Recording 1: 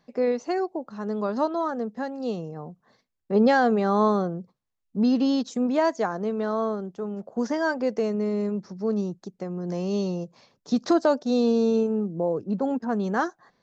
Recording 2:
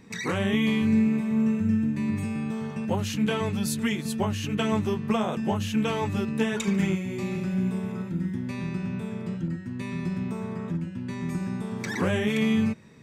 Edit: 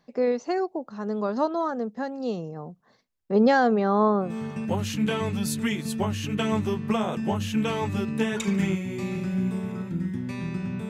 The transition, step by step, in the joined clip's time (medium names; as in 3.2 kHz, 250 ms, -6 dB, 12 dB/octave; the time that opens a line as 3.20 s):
recording 1
3.67–4.37 s: low-pass 6.1 kHz -> 1.2 kHz
4.28 s: go over to recording 2 from 2.48 s, crossfade 0.18 s